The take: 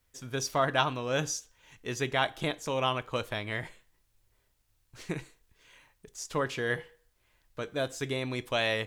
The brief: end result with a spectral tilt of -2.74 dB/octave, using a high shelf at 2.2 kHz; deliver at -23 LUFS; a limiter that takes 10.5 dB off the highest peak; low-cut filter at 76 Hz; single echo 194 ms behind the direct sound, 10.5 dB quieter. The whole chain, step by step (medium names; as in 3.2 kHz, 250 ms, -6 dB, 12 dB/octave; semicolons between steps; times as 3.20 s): high-pass 76 Hz; treble shelf 2.2 kHz +6.5 dB; peak limiter -18 dBFS; delay 194 ms -10.5 dB; trim +8.5 dB